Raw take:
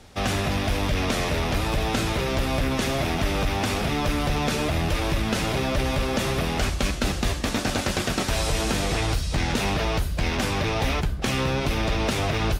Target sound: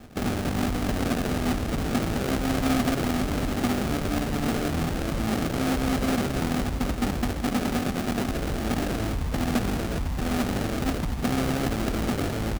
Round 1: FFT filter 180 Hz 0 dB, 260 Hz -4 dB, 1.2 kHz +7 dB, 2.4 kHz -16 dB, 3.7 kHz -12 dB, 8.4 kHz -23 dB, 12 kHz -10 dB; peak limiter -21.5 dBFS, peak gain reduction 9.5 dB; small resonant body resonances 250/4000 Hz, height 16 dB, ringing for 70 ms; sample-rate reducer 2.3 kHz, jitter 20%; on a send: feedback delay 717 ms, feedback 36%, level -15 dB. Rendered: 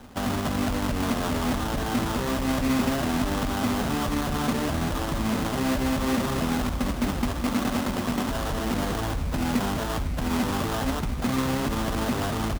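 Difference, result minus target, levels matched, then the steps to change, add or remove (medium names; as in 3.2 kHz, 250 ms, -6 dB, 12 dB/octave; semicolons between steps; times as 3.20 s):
sample-rate reducer: distortion -6 dB
change: sample-rate reducer 1 kHz, jitter 20%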